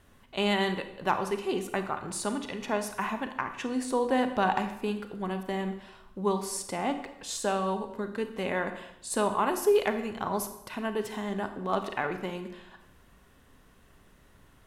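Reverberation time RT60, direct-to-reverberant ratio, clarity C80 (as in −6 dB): 0.80 s, 8.0 dB, 12.0 dB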